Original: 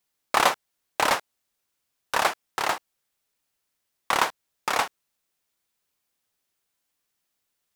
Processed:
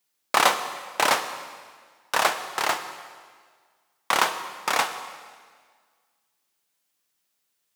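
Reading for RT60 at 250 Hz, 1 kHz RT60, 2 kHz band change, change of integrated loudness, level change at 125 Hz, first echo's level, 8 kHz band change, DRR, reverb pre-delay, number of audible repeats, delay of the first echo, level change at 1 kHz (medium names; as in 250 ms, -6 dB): 1.7 s, 1.7 s, +2.0 dB, +1.5 dB, -1.5 dB, no echo, +3.5 dB, 8.5 dB, 6 ms, no echo, no echo, +1.0 dB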